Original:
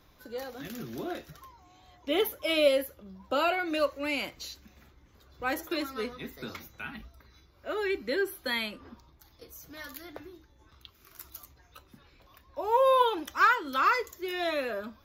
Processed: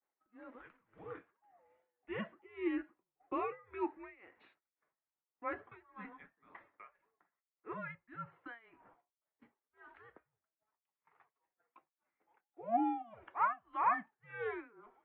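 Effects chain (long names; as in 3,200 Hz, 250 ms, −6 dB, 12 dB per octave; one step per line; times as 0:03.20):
single-sideband voice off tune −230 Hz 570–2,400 Hz
downward expander −56 dBFS
amplitude tremolo 1.8 Hz, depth 93%
level −6 dB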